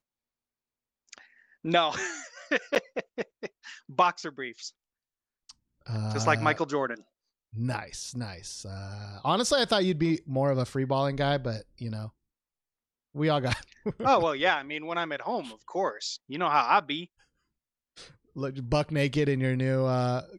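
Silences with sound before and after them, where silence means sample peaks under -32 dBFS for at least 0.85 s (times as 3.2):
4.68–5.89
12.06–13.16
17.03–18.38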